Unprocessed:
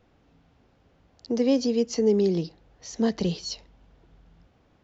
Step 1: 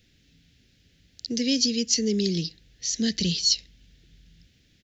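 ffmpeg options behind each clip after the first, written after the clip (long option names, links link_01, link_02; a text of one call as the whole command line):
ffmpeg -i in.wav -af "firequalizer=gain_entry='entry(170,0);entry(980,-28);entry(1700,2);entry(3800,12)':delay=0.05:min_phase=1,volume=1dB" out.wav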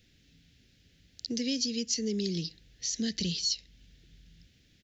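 ffmpeg -i in.wav -af "acompressor=threshold=-30dB:ratio=2,volume=-2dB" out.wav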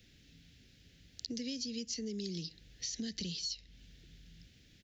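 ffmpeg -i in.wav -filter_complex "[0:a]acrossover=split=120|5300[link_01][link_02][link_03];[link_01]acompressor=threshold=-57dB:ratio=4[link_04];[link_02]acompressor=threshold=-42dB:ratio=4[link_05];[link_03]acompressor=threshold=-51dB:ratio=4[link_06];[link_04][link_05][link_06]amix=inputs=3:normalize=0,volume=1.5dB" out.wav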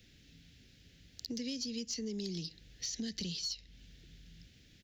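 ffmpeg -i in.wav -af "aeval=exprs='(tanh(20*val(0)+0.1)-tanh(0.1))/20':channel_layout=same,volume=1dB" out.wav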